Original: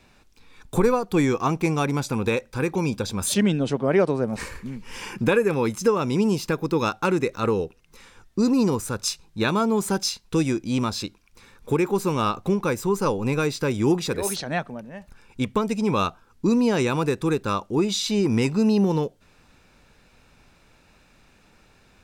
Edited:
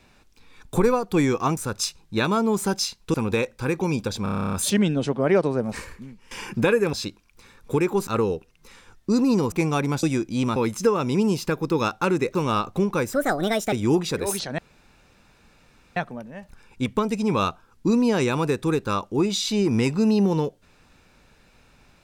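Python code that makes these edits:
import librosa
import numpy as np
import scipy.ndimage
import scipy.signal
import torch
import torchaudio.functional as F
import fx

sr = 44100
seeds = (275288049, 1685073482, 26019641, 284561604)

y = fx.edit(x, sr, fx.swap(start_s=1.57, length_s=0.51, other_s=8.81, other_length_s=1.57),
    fx.stutter(start_s=3.17, slice_s=0.03, count=11),
    fx.fade_out_to(start_s=4.29, length_s=0.66, floor_db=-17.5),
    fx.swap(start_s=5.57, length_s=1.79, other_s=10.91, other_length_s=1.14),
    fx.speed_span(start_s=12.83, length_s=0.86, speed=1.45),
    fx.insert_room_tone(at_s=14.55, length_s=1.38), tone=tone)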